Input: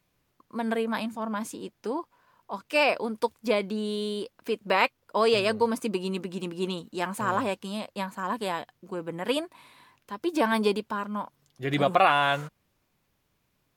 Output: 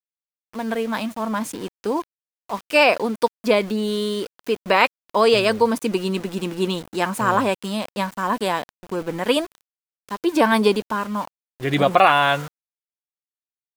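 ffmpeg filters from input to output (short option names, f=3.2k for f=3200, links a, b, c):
-af "dynaudnorm=f=300:g=7:m=6.5dB,aeval=exprs='val(0)*gte(abs(val(0)),0.0158)':c=same,volume=1.5dB"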